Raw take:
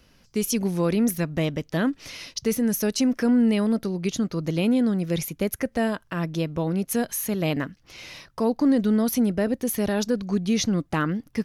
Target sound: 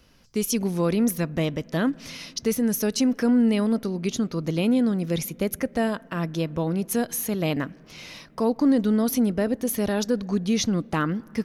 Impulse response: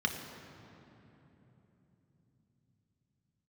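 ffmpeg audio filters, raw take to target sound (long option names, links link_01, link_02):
-filter_complex "[0:a]asplit=2[link_01][link_02];[1:a]atrim=start_sample=2205,lowpass=2500,lowshelf=frequency=400:gain=-8.5[link_03];[link_02][link_03]afir=irnorm=-1:irlink=0,volume=-23dB[link_04];[link_01][link_04]amix=inputs=2:normalize=0"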